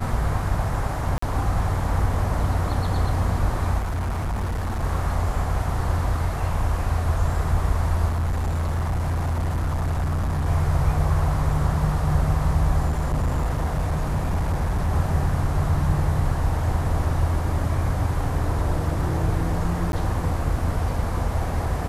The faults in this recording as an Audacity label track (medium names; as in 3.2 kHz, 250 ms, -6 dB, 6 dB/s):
1.180000	1.220000	dropout 44 ms
3.780000	4.840000	clipped -22.5 dBFS
8.090000	10.470000	clipped -20.5 dBFS
12.860000	14.900000	clipped -18.5 dBFS
19.920000	19.930000	dropout 11 ms